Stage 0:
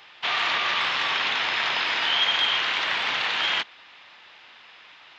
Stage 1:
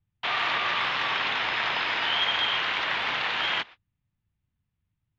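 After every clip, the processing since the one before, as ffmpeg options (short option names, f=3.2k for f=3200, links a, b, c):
-filter_complex "[0:a]acrossover=split=120[a][b];[a]acontrast=62[c];[b]agate=range=-44dB:threshold=-39dB:ratio=16:detection=peak[d];[c][d]amix=inputs=2:normalize=0,lowpass=f=2.6k:p=1"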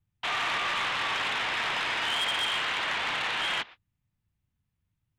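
-af "asoftclip=type=tanh:threshold=-23.5dB"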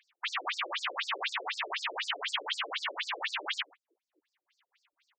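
-filter_complex "[0:a]acrossover=split=280|970|5400[a][b][c][d];[a]aecho=1:1:571:0.251[e];[c]acompressor=mode=upward:threshold=-48dB:ratio=2.5[f];[e][b][f][d]amix=inputs=4:normalize=0,afftfilt=real='re*between(b*sr/1024,400*pow(6300/400,0.5+0.5*sin(2*PI*4*pts/sr))/1.41,400*pow(6300/400,0.5+0.5*sin(2*PI*4*pts/sr))*1.41)':imag='im*between(b*sr/1024,400*pow(6300/400,0.5+0.5*sin(2*PI*4*pts/sr))/1.41,400*pow(6300/400,0.5+0.5*sin(2*PI*4*pts/sr))*1.41)':win_size=1024:overlap=0.75,volume=2.5dB"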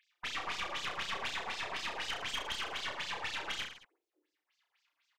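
-filter_complex "[0:a]aeval=exprs='(tanh(25.1*val(0)+0.6)-tanh(0.6))/25.1':c=same,asplit=2[a][b];[b]aecho=0:1:30|66|109.2|161|223.2:0.631|0.398|0.251|0.158|0.1[c];[a][c]amix=inputs=2:normalize=0,volume=-2.5dB"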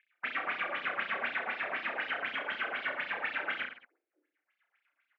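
-filter_complex "[0:a]asplit=2[a][b];[b]aeval=exprs='val(0)*gte(abs(val(0)),0.00708)':c=same,volume=-12dB[c];[a][c]amix=inputs=2:normalize=0,highpass=250,equalizer=f=250:t=q:w=4:g=6,equalizer=f=410:t=q:w=4:g=-3,equalizer=f=600:t=q:w=4:g=4,equalizer=f=980:t=q:w=4:g=-7,equalizer=f=1.5k:t=q:w=4:g=7,equalizer=f=2.2k:t=q:w=4:g=4,lowpass=f=2.4k:w=0.5412,lowpass=f=2.4k:w=1.3066,volume=2dB"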